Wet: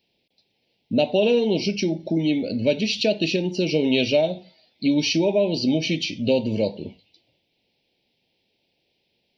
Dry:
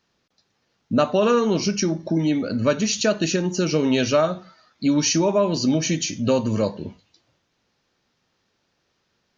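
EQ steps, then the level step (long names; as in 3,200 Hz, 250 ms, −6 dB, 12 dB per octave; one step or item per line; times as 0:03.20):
low-shelf EQ 260 Hz −10 dB
flat-topped bell 1,400 Hz −14 dB 1 octave
phaser with its sweep stopped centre 2,900 Hz, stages 4
+4.5 dB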